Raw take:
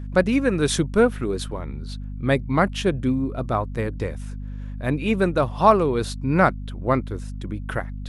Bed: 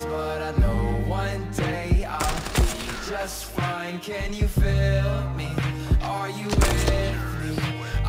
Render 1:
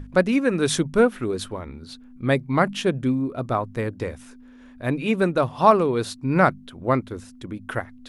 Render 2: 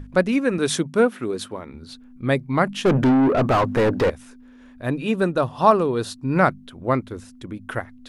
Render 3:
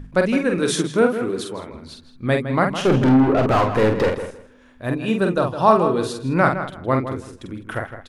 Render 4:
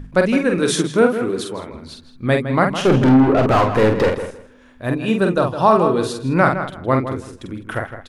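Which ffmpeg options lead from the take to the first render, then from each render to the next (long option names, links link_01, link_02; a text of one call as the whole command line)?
ffmpeg -i in.wav -af "bandreject=frequency=50:width_type=h:width=6,bandreject=frequency=100:width_type=h:width=6,bandreject=frequency=150:width_type=h:width=6,bandreject=frequency=200:width_type=h:width=6" out.wav
ffmpeg -i in.wav -filter_complex "[0:a]asettb=1/sr,asplit=3[link_01][link_02][link_03];[link_01]atrim=end=0.584[link_04];[link_02]atrim=start=0.58:end=1.74,asetpts=PTS-STARTPTS,afade=type=in:duration=0.004:curve=qsin,afade=type=out:start_time=1.156:duration=0.004:curve=qsin,highpass=140[link_05];[link_03]atrim=start=1.736[link_06];[link_04][link_05]acrossfade=duration=0.004:curve1=hsin:curve2=qsin[link_07];[link_07][link_06]acrossfade=duration=0.004:curve1=qsin:curve2=hsin,asettb=1/sr,asplit=3[link_08][link_09][link_10];[link_08]atrim=end=2.854[link_11];[link_09]atrim=start=2.85:end=4.1,asetpts=PTS-STARTPTS,afade=type=in:duration=0.004:curve=qsin,afade=type=out:start_time=1.246:duration=0.004:curve=qsin,asplit=2[link_12][link_13];[link_13]highpass=frequency=720:poles=1,volume=34dB,asoftclip=type=tanh:threshold=-9dB[link_14];[link_12][link_14]amix=inputs=2:normalize=0,lowpass=frequency=1100:poles=1,volume=-6dB[link_15];[link_10]atrim=start=4.096[link_16];[link_11][link_15]acrossfade=duration=0.004:curve1=hsin:curve2=qsin[link_17];[link_17][link_16]acrossfade=duration=0.004:curve1=qsin:curve2=hsin,asettb=1/sr,asplit=3[link_18][link_19][link_20];[link_18]atrim=end=4.854[link_21];[link_19]atrim=start=4.85:end=6.37,asetpts=PTS-STARTPTS,afade=type=in:duration=0.004:curve=qsin,afade=type=out:start_time=1.516:duration=0.004:curve=qsin,bandreject=frequency=2200:width=6.1[link_22];[link_20]atrim=start=6.366[link_23];[link_21][link_22]acrossfade=duration=0.004:curve1=hsin:curve2=qsin[link_24];[link_24][link_23]acrossfade=duration=0.004:curve1=qsin:curve2=hsin" out.wav
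ffmpeg -i in.wav -filter_complex "[0:a]asplit=2[link_01][link_02];[link_02]adelay=46,volume=-5dB[link_03];[link_01][link_03]amix=inputs=2:normalize=0,asplit=2[link_04][link_05];[link_05]adelay=161,lowpass=frequency=3400:poles=1,volume=-10dB,asplit=2[link_06][link_07];[link_07]adelay=161,lowpass=frequency=3400:poles=1,volume=0.2,asplit=2[link_08][link_09];[link_09]adelay=161,lowpass=frequency=3400:poles=1,volume=0.2[link_10];[link_04][link_06][link_08][link_10]amix=inputs=4:normalize=0" out.wav
ffmpeg -i in.wav -af "volume=2.5dB,alimiter=limit=-2dB:level=0:latency=1" out.wav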